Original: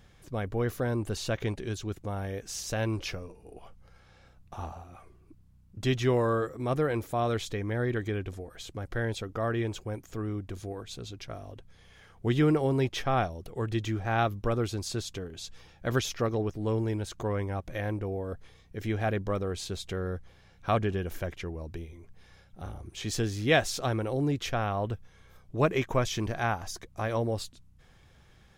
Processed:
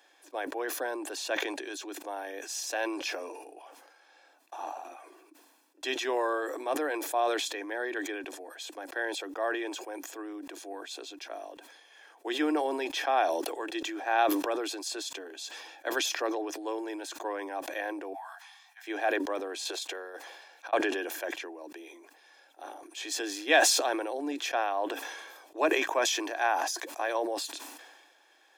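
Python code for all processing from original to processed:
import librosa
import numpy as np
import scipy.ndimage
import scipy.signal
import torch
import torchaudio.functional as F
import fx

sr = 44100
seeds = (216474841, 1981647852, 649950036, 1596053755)

y = fx.chain(x, sr, fx.steep_highpass(hz=730.0, slope=96),
    fx.detune_double(cents=35), at=(18.13, 18.87))
y = fx.chain(y, sr, fx.highpass(hz=370.0, slope=24),
    fx.over_compress(threshold_db=-41.0, ratio=-0.5), at=(19.65, 20.73))
y = scipy.signal.sosfilt(scipy.signal.butter(16, 290.0, 'highpass', fs=sr, output='sos'), y)
y = y + 0.51 * np.pad(y, (int(1.2 * sr / 1000.0), 0))[:len(y)]
y = fx.sustainer(y, sr, db_per_s=39.0)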